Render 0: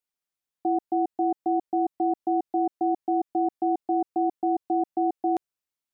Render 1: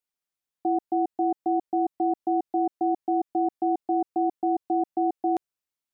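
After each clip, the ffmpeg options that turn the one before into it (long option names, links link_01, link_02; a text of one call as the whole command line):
ffmpeg -i in.wav -af anull out.wav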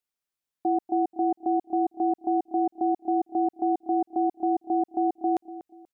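ffmpeg -i in.wav -filter_complex "[0:a]asplit=2[link_01][link_02];[link_02]adelay=241,lowpass=frequency=820:poles=1,volume=-13.5dB,asplit=2[link_03][link_04];[link_04]adelay=241,lowpass=frequency=820:poles=1,volume=0.35,asplit=2[link_05][link_06];[link_06]adelay=241,lowpass=frequency=820:poles=1,volume=0.35[link_07];[link_01][link_03][link_05][link_07]amix=inputs=4:normalize=0" out.wav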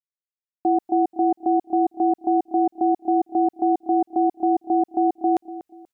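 ffmpeg -i in.wav -af "agate=range=-33dB:threshold=-56dB:ratio=3:detection=peak,volume=5dB" out.wav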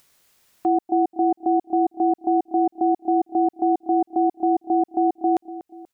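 ffmpeg -i in.wav -af "acompressor=mode=upward:threshold=-33dB:ratio=2.5" out.wav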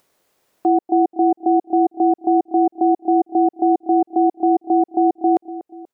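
ffmpeg -i in.wav -af "equalizer=frequency=470:width_type=o:width=2.7:gain=13,volume=-7dB" out.wav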